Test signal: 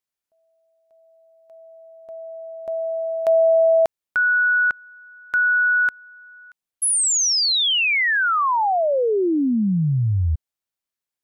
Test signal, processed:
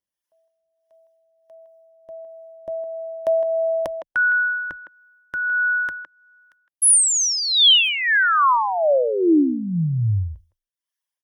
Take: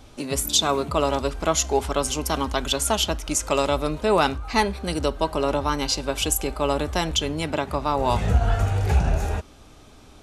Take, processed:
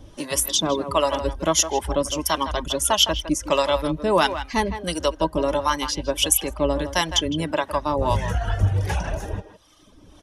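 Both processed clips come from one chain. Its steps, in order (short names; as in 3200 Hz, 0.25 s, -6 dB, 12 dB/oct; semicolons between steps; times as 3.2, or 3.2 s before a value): reverb removal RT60 1.2 s; ripple EQ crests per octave 1.2, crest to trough 7 dB; harmonic tremolo 1.5 Hz, depth 70%, crossover 560 Hz; speakerphone echo 0.16 s, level -10 dB; gain +4.5 dB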